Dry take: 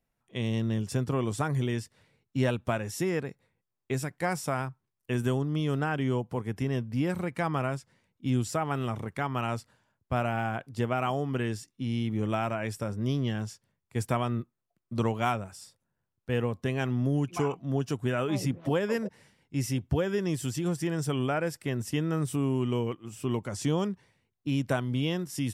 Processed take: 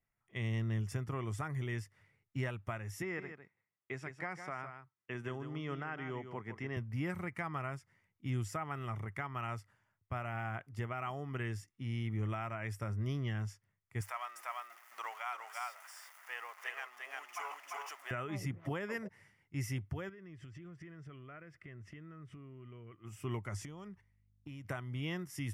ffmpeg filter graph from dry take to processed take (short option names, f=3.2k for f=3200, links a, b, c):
-filter_complex "[0:a]asettb=1/sr,asplit=3[a][b][c];[a]atrim=end=3.024[d];[b]atrim=start=3.02:end=6.77,asetpts=PTS-STARTPTS,afade=t=in:d=0.004:c=qsin,afade=t=out:st=3.746:d=0.004:c=qsin,highpass=180,lowpass=4.8k,aecho=1:1:155:0.316,atrim=end_sample=165375[e];[c]atrim=start=6.766[f];[d][e]acrossfade=d=0.004:c1=hsin:c2=qsin[g];[g][f]acrossfade=d=0.004:c1=qsin:c2=hsin,asettb=1/sr,asplit=3[h][i][j];[h]atrim=end=14.014[k];[i]atrim=start=14.01:end=18.11,asetpts=PTS-STARTPTS,afade=t=in:d=0.004:c=qsin,afade=t=out:st=4.096:d=0.004:c=qsin,aeval=exprs='val(0)+0.5*0.0106*sgn(val(0))':c=same,highpass=f=730:w=0.5412,highpass=f=730:w=1.3066,aecho=1:1:346:0.708,atrim=end_sample=180810[l];[j]atrim=start=18.106[m];[k][l]acrossfade=d=0.004:c1=hsin:c2=qsin[n];[n][m]acrossfade=d=0.004:c1=qsin:c2=hsin,asettb=1/sr,asplit=3[o][p][q];[o]atrim=end=20.094[r];[p]atrim=start=20.09:end=23.04,asetpts=PTS-STARTPTS,afade=t=in:d=0.004:c=qsin,afade=t=out:st=2.946:d=0.004:c=qsin,lowpass=2.8k,acompressor=threshold=-39dB:ratio=8:attack=3.2:release=140:knee=1:detection=peak,equalizer=f=850:w=4.8:g=-14.5[s];[q]atrim=start=23.036[t];[r][s]acrossfade=d=0.004:c1=hsin:c2=qsin[u];[u][t]acrossfade=d=0.004:c1=qsin:c2=hsin,asettb=1/sr,asplit=3[v][w][x];[v]atrim=end=23.604[y];[w]atrim=start=23.6:end=24.65,asetpts=PTS-STARTPTS,afade=t=in:d=0.004:c=qsin,afade=t=out:st=1.046:d=0.004:c=qsin,agate=range=-14dB:threshold=-56dB:ratio=16:release=100:detection=peak,acompressor=threshold=-34dB:ratio=16:attack=3.2:release=140:knee=1:detection=peak,aeval=exprs='val(0)+0.000501*(sin(2*PI*50*n/s)+sin(2*PI*2*50*n/s)/2+sin(2*PI*3*50*n/s)/3+sin(2*PI*4*50*n/s)/4+sin(2*PI*5*50*n/s)/5)':c=same[z];[x]atrim=start=24.646[aa];[y][z]acrossfade=d=0.004:c1=hsin:c2=qsin[ab];[ab][aa]acrossfade=d=0.004:c1=qsin:c2=hsin,equalizer=f=100:t=o:w=0.33:g=9,equalizer=f=250:t=o:w=0.33:g=-6,equalizer=f=500:t=o:w=0.33:g=-6,equalizer=f=1.25k:t=o:w=0.33:g=6,equalizer=f=2k:t=o:w=0.33:g=10,equalizer=f=4k:t=o:w=0.33:g=-10,equalizer=f=8k:t=o:w=0.33:g=-4,alimiter=limit=-20dB:level=0:latency=1:release=409,volume=-8dB"